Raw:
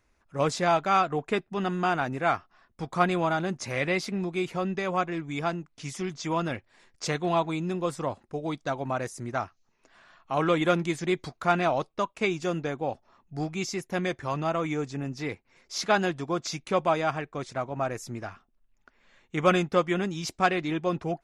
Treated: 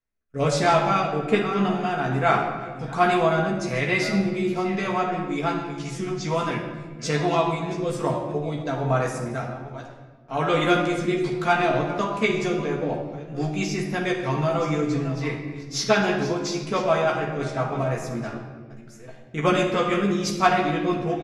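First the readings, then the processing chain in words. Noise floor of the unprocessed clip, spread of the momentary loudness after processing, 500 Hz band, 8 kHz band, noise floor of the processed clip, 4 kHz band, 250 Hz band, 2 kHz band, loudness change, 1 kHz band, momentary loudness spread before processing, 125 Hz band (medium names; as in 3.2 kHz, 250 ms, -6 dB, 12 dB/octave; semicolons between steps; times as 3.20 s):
-70 dBFS, 11 LU, +4.5 dB, +3.5 dB, -43 dBFS, +4.5 dB, +5.0 dB, +4.5 dB, +4.5 dB, +4.0 dB, 10 LU, +6.0 dB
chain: chunks repeated in reverse 616 ms, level -14 dB; rotary cabinet horn 1.2 Hz, later 6 Hz, at 11.56 s; doubling 14 ms -4 dB; gate with hold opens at -44 dBFS; simulated room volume 1200 m³, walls mixed, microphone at 1.6 m; trim +2.5 dB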